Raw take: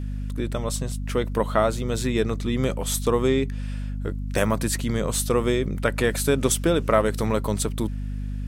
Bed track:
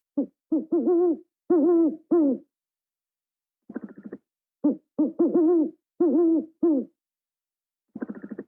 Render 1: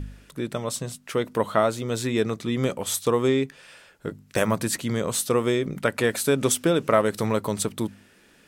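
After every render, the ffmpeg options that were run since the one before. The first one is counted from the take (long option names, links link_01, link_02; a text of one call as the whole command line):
ffmpeg -i in.wav -af "bandreject=frequency=50:width_type=h:width=4,bandreject=frequency=100:width_type=h:width=4,bandreject=frequency=150:width_type=h:width=4,bandreject=frequency=200:width_type=h:width=4,bandreject=frequency=250:width_type=h:width=4" out.wav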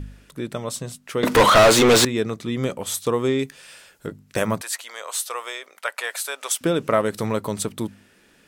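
ffmpeg -i in.wav -filter_complex "[0:a]asettb=1/sr,asplit=3[link_01][link_02][link_03];[link_01]atrim=end=1.234[link_04];[link_02]atrim=start=1.23:end=2.05,asetpts=PTS-STARTPTS,afade=type=in:duration=0.004:curve=qsin,afade=type=out:start_time=0.816:duration=0.004:curve=qsin,asplit=2[link_05][link_06];[link_06]highpass=frequency=720:poles=1,volume=37dB,asoftclip=type=tanh:threshold=-5.5dB[link_07];[link_05][link_07]amix=inputs=2:normalize=0,lowpass=frequency=5000:poles=1,volume=-6dB[link_08];[link_03]atrim=start=2.046[link_09];[link_04][link_08]acrossfade=duration=0.004:curve1=hsin:curve2=qsin[link_10];[link_10][link_09]acrossfade=duration=0.004:curve1=qsin:curve2=hsin,asettb=1/sr,asplit=3[link_11][link_12][link_13];[link_11]atrim=end=3.394[link_14];[link_12]atrim=start=3.39:end=4.07,asetpts=PTS-STARTPTS,afade=type=in:duration=0.004:curve=qsin,afade=type=out:start_time=0.676:duration=0.004:curve=qsin,highshelf=frequency=4200:gain=11[link_15];[link_13]atrim=start=4.066[link_16];[link_14][link_15]acrossfade=duration=0.004:curve1=hsin:curve2=qsin[link_17];[link_17][link_16]acrossfade=duration=0.004:curve1=qsin:curve2=hsin,asettb=1/sr,asplit=3[link_18][link_19][link_20];[link_18]atrim=end=4.614[link_21];[link_19]atrim=start=4.61:end=6.61,asetpts=PTS-STARTPTS,afade=type=in:duration=0.004:curve=qsin,afade=type=out:start_time=1.996:duration=0.004:curve=qsin,highpass=frequency=690:width=0.5412,highpass=frequency=690:width=1.3066[link_22];[link_20]atrim=start=6.606[link_23];[link_21][link_22]acrossfade=duration=0.004:curve1=hsin:curve2=qsin[link_24];[link_24][link_23]acrossfade=duration=0.004:curve1=qsin:curve2=hsin" out.wav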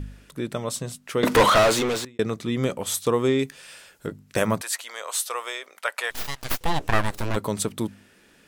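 ffmpeg -i in.wav -filter_complex "[0:a]asplit=3[link_01][link_02][link_03];[link_01]afade=type=out:start_time=6.1:duration=0.02[link_04];[link_02]aeval=exprs='abs(val(0))':channel_layout=same,afade=type=in:start_time=6.1:duration=0.02,afade=type=out:start_time=7.35:duration=0.02[link_05];[link_03]afade=type=in:start_time=7.35:duration=0.02[link_06];[link_04][link_05][link_06]amix=inputs=3:normalize=0,asplit=2[link_07][link_08];[link_07]atrim=end=2.19,asetpts=PTS-STARTPTS,afade=type=out:start_time=1.2:duration=0.99[link_09];[link_08]atrim=start=2.19,asetpts=PTS-STARTPTS,afade=type=in:duration=0.004:curve=hsin[link_10];[link_09][link_10]concat=n=2:v=0:a=1" out.wav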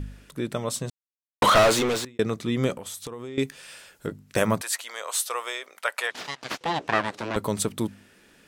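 ffmpeg -i in.wav -filter_complex "[0:a]asettb=1/sr,asplit=3[link_01][link_02][link_03];[link_01]atrim=end=2.754[link_04];[link_02]atrim=start=2.75:end=3.38,asetpts=PTS-STARTPTS,afade=type=in:duration=0.004:curve=qsin,afade=type=out:start_time=0.626:duration=0.004:curve=qsin,acompressor=threshold=-33dB:ratio=10:attack=3.2:release=140:knee=1:detection=peak[link_05];[link_03]atrim=start=3.376[link_06];[link_04][link_05]acrossfade=duration=0.004:curve1=hsin:curve2=qsin[link_07];[link_07][link_06]acrossfade=duration=0.004:curve1=qsin:curve2=hsin,asettb=1/sr,asplit=3[link_08][link_09][link_10];[link_08]atrim=end=6.074[link_11];[link_09]atrim=start=6.07:end=7.36,asetpts=PTS-STARTPTS,afade=type=in:duration=0.004:curve=qsin,afade=type=out:start_time=1.286:duration=0.004:curve=qsin,highpass=210,lowpass=5600[link_12];[link_10]atrim=start=7.356[link_13];[link_11][link_12]acrossfade=duration=0.004:curve1=hsin:curve2=qsin[link_14];[link_14][link_13]acrossfade=duration=0.004:curve1=qsin:curve2=hsin,asplit=3[link_15][link_16][link_17];[link_15]atrim=end=0.9,asetpts=PTS-STARTPTS,afade=type=out:start_time=0.896:duration=0.004:curve=hsin[link_18];[link_16]atrim=start=0.9:end=1.42,asetpts=PTS-STARTPTS,volume=0[link_19];[link_17]atrim=start=1.42,asetpts=PTS-STARTPTS,afade=type=in:duration=0.004:curve=hsin[link_20];[link_18][link_19][link_20]concat=n=3:v=0:a=1" out.wav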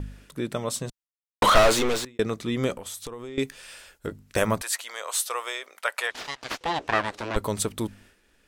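ffmpeg -i in.wav -af "agate=range=-33dB:threshold=-49dB:ratio=3:detection=peak,asubboost=boost=8:cutoff=51" out.wav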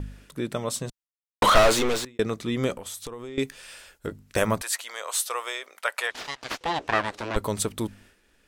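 ffmpeg -i in.wav -af anull out.wav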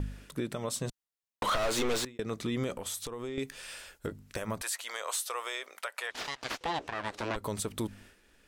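ffmpeg -i in.wav -af "acompressor=threshold=-24dB:ratio=6,alimiter=limit=-23dB:level=0:latency=1:release=177" out.wav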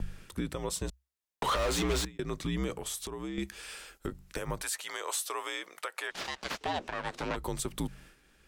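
ffmpeg -i in.wav -af "afreqshift=-66" out.wav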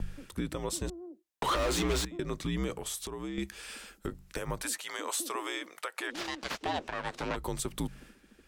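ffmpeg -i in.wav -i bed.wav -filter_complex "[1:a]volume=-24dB[link_01];[0:a][link_01]amix=inputs=2:normalize=0" out.wav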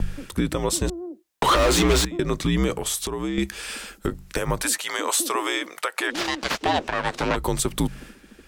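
ffmpeg -i in.wav -af "volume=11dB" out.wav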